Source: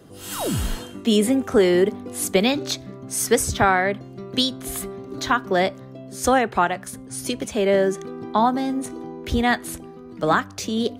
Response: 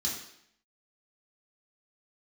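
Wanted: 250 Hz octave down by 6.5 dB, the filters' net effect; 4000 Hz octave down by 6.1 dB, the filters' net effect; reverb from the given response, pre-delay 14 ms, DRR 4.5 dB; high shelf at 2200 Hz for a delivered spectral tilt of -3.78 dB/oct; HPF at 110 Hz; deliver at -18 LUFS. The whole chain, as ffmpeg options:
-filter_complex "[0:a]highpass=110,equalizer=f=250:t=o:g=-8,highshelf=f=2.2k:g=-3.5,equalizer=f=4k:t=o:g=-4.5,asplit=2[a][b];[1:a]atrim=start_sample=2205,adelay=14[c];[b][c]afir=irnorm=-1:irlink=0,volume=-8dB[d];[a][d]amix=inputs=2:normalize=0,volume=5.5dB"

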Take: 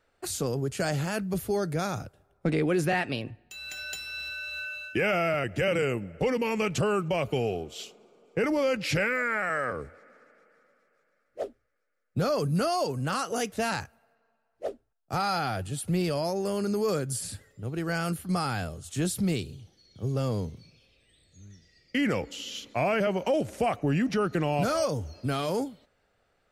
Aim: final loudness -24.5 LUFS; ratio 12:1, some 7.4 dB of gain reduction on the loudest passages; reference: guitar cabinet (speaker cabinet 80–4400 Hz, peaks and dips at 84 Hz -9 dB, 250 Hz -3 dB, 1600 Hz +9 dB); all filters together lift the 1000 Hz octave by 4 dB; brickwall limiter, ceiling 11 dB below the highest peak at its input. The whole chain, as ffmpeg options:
-af "equalizer=f=1k:t=o:g=4,acompressor=threshold=-28dB:ratio=12,alimiter=level_in=3.5dB:limit=-24dB:level=0:latency=1,volume=-3.5dB,highpass=80,equalizer=f=84:t=q:w=4:g=-9,equalizer=f=250:t=q:w=4:g=-3,equalizer=f=1.6k:t=q:w=4:g=9,lowpass=f=4.4k:w=0.5412,lowpass=f=4.4k:w=1.3066,volume=12dB"

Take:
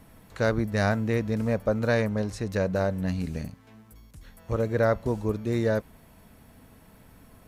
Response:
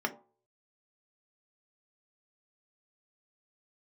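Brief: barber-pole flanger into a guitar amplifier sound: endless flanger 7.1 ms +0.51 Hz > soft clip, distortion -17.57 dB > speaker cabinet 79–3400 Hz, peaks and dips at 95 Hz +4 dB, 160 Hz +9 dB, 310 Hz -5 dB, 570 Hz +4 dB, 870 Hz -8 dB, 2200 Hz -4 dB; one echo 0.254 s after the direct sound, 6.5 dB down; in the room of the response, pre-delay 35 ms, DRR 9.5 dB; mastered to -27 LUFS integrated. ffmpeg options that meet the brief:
-filter_complex "[0:a]aecho=1:1:254:0.473,asplit=2[a][b];[1:a]atrim=start_sample=2205,adelay=35[c];[b][c]afir=irnorm=-1:irlink=0,volume=-16dB[d];[a][d]amix=inputs=2:normalize=0,asplit=2[e][f];[f]adelay=7.1,afreqshift=0.51[g];[e][g]amix=inputs=2:normalize=1,asoftclip=threshold=-19dB,highpass=79,equalizer=f=95:t=q:w=4:g=4,equalizer=f=160:t=q:w=4:g=9,equalizer=f=310:t=q:w=4:g=-5,equalizer=f=570:t=q:w=4:g=4,equalizer=f=870:t=q:w=4:g=-8,equalizer=f=2.2k:t=q:w=4:g=-4,lowpass=f=3.4k:w=0.5412,lowpass=f=3.4k:w=1.3066,volume=2.5dB"

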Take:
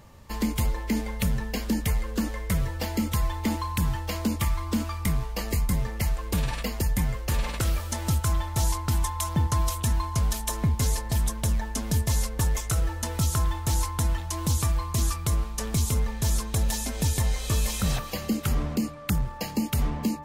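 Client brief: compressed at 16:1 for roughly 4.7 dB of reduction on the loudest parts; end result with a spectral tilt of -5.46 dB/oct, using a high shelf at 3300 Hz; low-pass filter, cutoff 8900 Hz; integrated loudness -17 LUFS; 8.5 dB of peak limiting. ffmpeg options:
-af "lowpass=8.9k,highshelf=f=3.3k:g=-4.5,acompressor=threshold=-25dB:ratio=16,volume=17.5dB,alimiter=limit=-8dB:level=0:latency=1"

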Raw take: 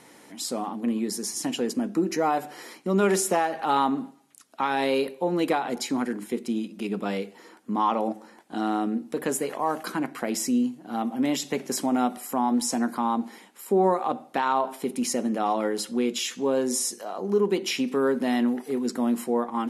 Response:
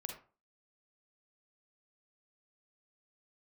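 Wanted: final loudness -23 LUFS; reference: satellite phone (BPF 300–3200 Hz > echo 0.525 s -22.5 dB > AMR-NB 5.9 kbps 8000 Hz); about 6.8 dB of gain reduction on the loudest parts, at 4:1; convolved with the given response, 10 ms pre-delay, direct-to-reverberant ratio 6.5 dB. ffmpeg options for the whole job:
-filter_complex "[0:a]acompressor=threshold=-26dB:ratio=4,asplit=2[a][b];[1:a]atrim=start_sample=2205,adelay=10[c];[b][c]afir=irnorm=-1:irlink=0,volume=-4dB[d];[a][d]amix=inputs=2:normalize=0,highpass=300,lowpass=3.2k,aecho=1:1:525:0.075,volume=10.5dB" -ar 8000 -c:a libopencore_amrnb -b:a 5900

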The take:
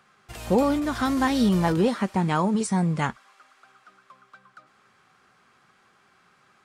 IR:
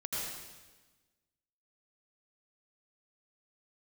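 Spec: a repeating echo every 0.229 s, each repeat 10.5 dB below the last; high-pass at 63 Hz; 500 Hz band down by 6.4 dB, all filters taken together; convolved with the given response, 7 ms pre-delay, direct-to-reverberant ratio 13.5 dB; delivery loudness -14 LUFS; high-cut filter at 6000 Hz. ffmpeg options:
-filter_complex "[0:a]highpass=63,lowpass=6k,equalizer=f=500:t=o:g=-8,aecho=1:1:229|458|687:0.299|0.0896|0.0269,asplit=2[a][b];[1:a]atrim=start_sample=2205,adelay=7[c];[b][c]afir=irnorm=-1:irlink=0,volume=-17dB[d];[a][d]amix=inputs=2:normalize=0,volume=11dB"

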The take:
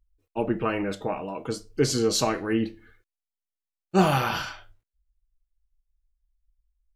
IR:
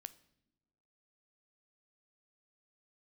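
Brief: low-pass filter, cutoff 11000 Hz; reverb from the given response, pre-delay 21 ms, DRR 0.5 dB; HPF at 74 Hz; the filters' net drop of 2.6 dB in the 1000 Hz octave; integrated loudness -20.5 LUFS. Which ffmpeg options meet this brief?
-filter_complex "[0:a]highpass=74,lowpass=11k,equalizer=f=1k:t=o:g=-3.5,asplit=2[a][b];[1:a]atrim=start_sample=2205,adelay=21[c];[b][c]afir=irnorm=-1:irlink=0,volume=5dB[d];[a][d]amix=inputs=2:normalize=0,volume=3.5dB"

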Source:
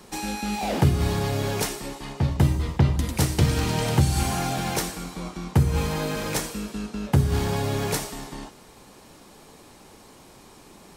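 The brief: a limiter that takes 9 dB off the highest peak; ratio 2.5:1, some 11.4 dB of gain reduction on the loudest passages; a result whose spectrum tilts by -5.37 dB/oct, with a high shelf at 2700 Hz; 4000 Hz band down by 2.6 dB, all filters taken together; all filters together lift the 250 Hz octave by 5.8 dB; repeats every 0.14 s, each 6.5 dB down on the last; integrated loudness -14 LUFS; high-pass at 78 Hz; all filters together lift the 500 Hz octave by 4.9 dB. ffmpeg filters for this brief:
-af "highpass=78,equalizer=f=250:t=o:g=7.5,equalizer=f=500:t=o:g=3.5,highshelf=f=2.7k:g=5,equalizer=f=4k:t=o:g=-8,acompressor=threshold=-30dB:ratio=2.5,alimiter=limit=-23dB:level=0:latency=1,aecho=1:1:140|280|420|560|700|840:0.473|0.222|0.105|0.0491|0.0231|0.0109,volume=18dB"

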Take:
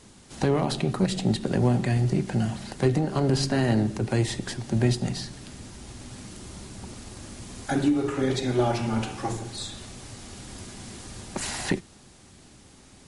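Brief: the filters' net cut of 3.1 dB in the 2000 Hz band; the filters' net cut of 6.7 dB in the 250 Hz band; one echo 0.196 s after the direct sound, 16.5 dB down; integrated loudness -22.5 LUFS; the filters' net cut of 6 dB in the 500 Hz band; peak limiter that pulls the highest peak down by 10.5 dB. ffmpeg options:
-af "equalizer=f=250:t=o:g=-7.5,equalizer=f=500:t=o:g=-5,equalizer=f=2k:t=o:g=-3.5,alimiter=limit=-24dB:level=0:latency=1,aecho=1:1:196:0.15,volume=12.5dB"

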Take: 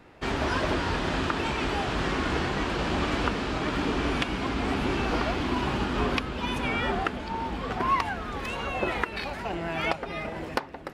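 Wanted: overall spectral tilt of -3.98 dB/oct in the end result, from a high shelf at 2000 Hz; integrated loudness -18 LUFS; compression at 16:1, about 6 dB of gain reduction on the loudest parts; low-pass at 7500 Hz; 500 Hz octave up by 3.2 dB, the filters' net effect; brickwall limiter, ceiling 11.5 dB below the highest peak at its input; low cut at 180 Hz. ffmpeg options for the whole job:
-af "highpass=180,lowpass=7.5k,equalizer=f=500:t=o:g=5,highshelf=f=2k:g=-8.5,acompressor=threshold=-28dB:ratio=16,volume=16.5dB,alimiter=limit=-8dB:level=0:latency=1"

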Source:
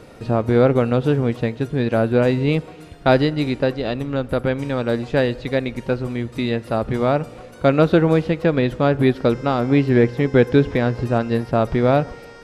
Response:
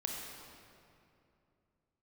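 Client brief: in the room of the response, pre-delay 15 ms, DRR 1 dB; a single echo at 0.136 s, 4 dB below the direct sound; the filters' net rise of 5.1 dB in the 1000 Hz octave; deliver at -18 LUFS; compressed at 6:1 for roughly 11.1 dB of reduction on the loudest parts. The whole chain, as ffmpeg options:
-filter_complex "[0:a]equalizer=f=1k:t=o:g=7.5,acompressor=threshold=-20dB:ratio=6,aecho=1:1:136:0.631,asplit=2[a][b];[1:a]atrim=start_sample=2205,adelay=15[c];[b][c]afir=irnorm=-1:irlink=0,volume=-3dB[d];[a][d]amix=inputs=2:normalize=0,volume=3.5dB"

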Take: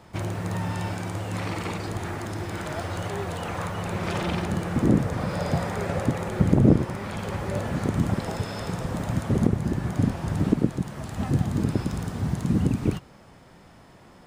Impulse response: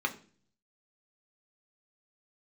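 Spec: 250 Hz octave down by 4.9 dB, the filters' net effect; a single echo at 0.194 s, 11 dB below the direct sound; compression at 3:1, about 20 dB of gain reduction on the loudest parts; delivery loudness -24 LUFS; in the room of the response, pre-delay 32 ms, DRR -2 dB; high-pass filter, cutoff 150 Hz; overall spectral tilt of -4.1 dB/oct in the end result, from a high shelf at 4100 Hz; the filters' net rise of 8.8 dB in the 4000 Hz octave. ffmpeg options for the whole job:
-filter_complex "[0:a]highpass=150,equalizer=f=250:t=o:g=-5.5,equalizer=f=4k:t=o:g=7,highshelf=f=4.1k:g=7.5,acompressor=threshold=-46dB:ratio=3,aecho=1:1:194:0.282,asplit=2[a][b];[1:a]atrim=start_sample=2205,adelay=32[c];[b][c]afir=irnorm=-1:irlink=0,volume=-5dB[d];[a][d]amix=inputs=2:normalize=0,volume=16.5dB"

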